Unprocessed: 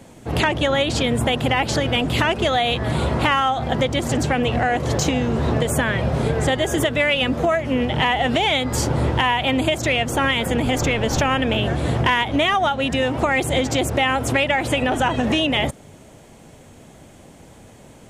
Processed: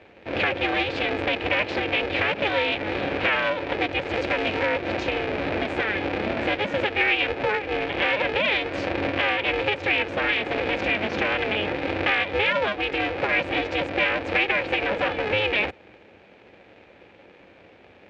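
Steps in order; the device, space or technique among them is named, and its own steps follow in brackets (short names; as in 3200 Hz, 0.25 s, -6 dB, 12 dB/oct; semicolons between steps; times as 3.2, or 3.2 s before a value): ring modulator pedal into a guitar cabinet (polarity switched at an audio rate 210 Hz; speaker cabinet 90–3900 Hz, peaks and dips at 140 Hz -9 dB, 200 Hz +4 dB, 540 Hz +7 dB, 1100 Hz -5 dB, 1700 Hz +4 dB, 2400 Hz +10 dB); 4.14–4.65 high shelf 6600 Hz +9 dB; gain -7 dB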